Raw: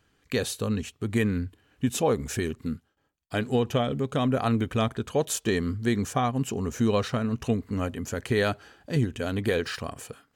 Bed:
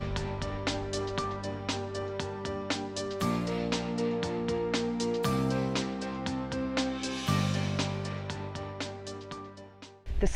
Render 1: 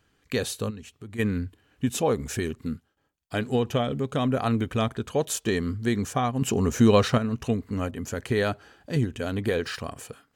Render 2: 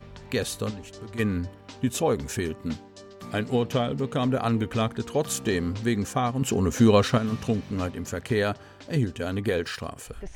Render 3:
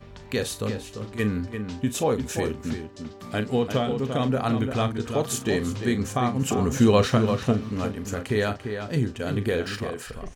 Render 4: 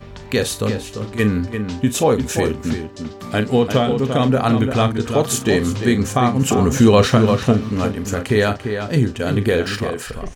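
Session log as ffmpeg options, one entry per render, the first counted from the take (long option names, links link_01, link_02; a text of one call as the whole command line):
ffmpeg -i in.wav -filter_complex "[0:a]asplit=3[link_01][link_02][link_03];[link_01]afade=type=out:start_time=0.69:duration=0.02[link_04];[link_02]acompressor=threshold=-46dB:ratio=2:attack=3.2:release=140:knee=1:detection=peak,afade=type=in:start_time=0.69:duration=0.02,afade=type=out:start_time=1.18:duration=0.02[link_05];[link_03]afade=type=in:start_time=1.18:duration=0.02[link_06];[link_04][link_05][link_06]amix=inputs=3:normalize=0,asettb=1/sr,asplit=3[link_07][link_08][link_09];[link_07]atrim=end=7.914[link_10];[link_08]atrim=start=7.91:end=9.61,asetpts=PTS-STARTPTS,afade=type=in:duration=0.004:curve=qsin,afade=type=out:start_time=1.696:duration=0.004:curve=qsin,adynamicequalizer=threshold=0.01:dfrequency=1600:dqfactor=0.7:tfrequency=1600:tqfactor=0.7:attack=5:release=100:ratio=0.375:range=2.5:mode=cutabove:tftype=highshelf[link_11];[link_09]atrim=start=9.606[link_12];[link_10][link_11]acrossfade=duration=0.004:curve1=hsin:curve2=qsin[link_13];[link_13][link_12]acrossfade=duration=0.004:curve1=qsin:curve2=hsin,asplit=3[link_14][link_15][link_16];[link_14]atrim=end=6.422[link_17];[link_15]atrim=start=6.418:end=7.182,asetpts=PTS-STARTPTS,volume=6dB[link_18];[link_16]atrim=start=7.178[link_19];[link_17][link_18]acrossfade=duration=0.004:curve1=hsin:curve2=hsin[link_20];[link_20][link_19]acrossfade=duration=0.004:curve1=hsin:curve2=hsin" out.wav
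ffmpeg -i in.wav -i bed.wav -filter_complex "[1:a]volume=-11.5dB[link_01];[0:a][link_01]amix=inputs=2:normalize=0" out.wav
ffmpeg -i in.wav -filter_complex "[0:a]asplit=2[link_01][link_02];[link_02]adelay=38,volume=-11.5dB[link_03];[link_01][link_03]amix=inputs=2:normalize=0,asplit=2[link_04][link_05];[link_05]adelay=344,volume=-7dB,highshelf=frequency=4000:gain=-7.74[link_06];[link_04][link_06]amix=inputs=2:normalize=0" out.wav
ffmpeg -i in.wav -af "volume=8dB,alimiter=limit=-2dB:level=0:latency=1" out.wav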